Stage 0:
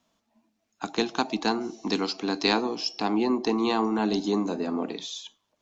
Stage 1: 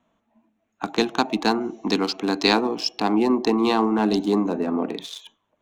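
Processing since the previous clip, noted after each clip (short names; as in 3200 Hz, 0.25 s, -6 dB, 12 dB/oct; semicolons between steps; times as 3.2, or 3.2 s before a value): Wiener smoothing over 9 samples; gain +5 dB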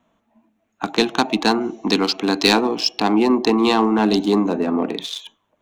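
dynamic EQ 3200 Hz, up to +4 dB, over -40 dBFS, Q 0.88; soft clip -7.5 dBFS, distortion -19 dB; gain +4 dB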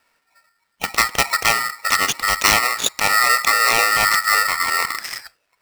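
polarity switched at an audio rate 1600 Hz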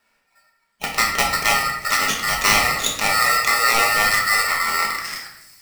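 thin delay 0.364 s, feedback 64%, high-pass 5300 Hz, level -19 dB; shoebox room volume 280 m³, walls mixed, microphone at 1.3 m; gain -4 dB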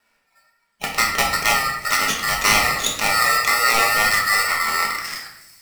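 wow and flutter 23 cents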